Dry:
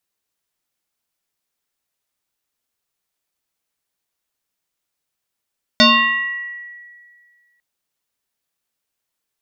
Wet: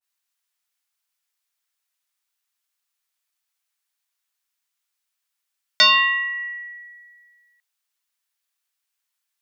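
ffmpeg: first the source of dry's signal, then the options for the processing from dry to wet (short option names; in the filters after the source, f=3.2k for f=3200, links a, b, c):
-f lavfi -i "aevalsrc='0.501*pow(10,-3*t/1.94)*sin(2*PI*1930*t+3.6*pow(10,-3*t/1.33)*sin(2*PI*0.44*1930*t))':d=1.8:s=44100"
-af "highpass=1.1k,adynamicequalizer=threshold=0.0501:dfrequency=1500:dqfactor=0.7:tfrequency=1500:tqfactor=0.7:attack=5:release=100:ratio=0.375:range=2:mode=cutabove:tftype=highshelf"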